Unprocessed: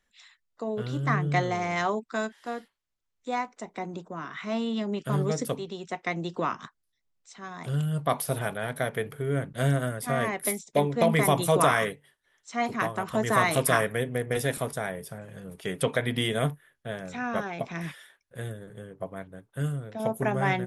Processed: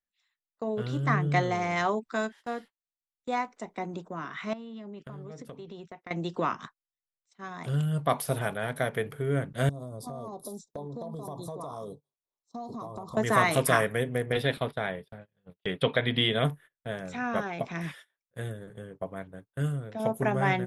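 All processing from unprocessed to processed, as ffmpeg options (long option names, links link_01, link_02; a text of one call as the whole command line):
ffmpeg -i in.wav -filter_complex "[0:a]asettb=1/sr,asplit=3[link_01][link_02][link_03];[link_01]atrim=end=4.534[link_04];[link_02]atrim=start=4.53:end=6.11,asetpts=PTS-STARTPTS,afade=type=in:duration=0.004:curve=qsin,afade=type=out:start_time=1.576:duration=0.004:curve=qsin,lowpass=frequency=2600:poles=1,acompressor=threshold=-38dB:ratio=20:attack=3.2:release=140:knee=1:detection=peak[link_05];[link_03]atrim=start=6.106[link_06];[link_04][link_05]acrossfade=duration=0.004:curve1=hsin:curve2=qsin[link_07];[link_07][link_06]acrossfade=duration=0.004:curve1=qsin:curve2=hsin,asettb=1/sr,asplit=3[link_08][link_09][link_10];[link_08]atrim=end=9.694[link_11];[link_09]atrim=start=9.69:end=13.17,asetpts=PTS-STARTPTS,afade=type=in:duration=0.004:curve=qsin,afade=type=out:start_time=3.476:duration=0.004:curve=qsin,asuperstop=centerf=2100:order=12:qfactor=0.82,highshelf=frequency=7600:gain=-11,acompressor=threshold=-34dB:ratio=16:attack=3.2:release=140:knee=1:detection=peak[link_12];[link_10]atrim=start=13.166[link_13];[link_11][link_12]acrossfade=duration=0.004:curve1=hsin:curve2=qsin[link_14];[link_14][link_13]acrossfade=duration=0.004:curve1=qsin:curve2=hsin,asettb=1/sr,asplit=3[link_15][link_16][link_17];[link_15]atrim=end=14.324[link_18];[link_16]atrim=start=14.32:end=16.45,asetpts=PTS-STARTPTS,afade=type=in:duration=0.004:curve=qsin,afade=type=out:start_time=2.126:duration=0.004:curve=qsin,highshelf=frequency=5000:width_type=q:width=3:gain=-9.5,agate=range=-33dB:threshold=-35dB:ratio=3:release=100:detection=peak[link_19];[link_17]atrim=start=16.446[link_20];[link_18][link_19]acrossfade=duration=0.004:curve1=hsin:curve2=qsin[link_21];[link_21][link_20]acrossfade=duration=0.004:curve1=qsin:curve2=hsin,agate=range=-22dB:threshold=-46dB:ratio=16:detection=peak,highshelf=frequency=7700:gain=-4.5" out.wav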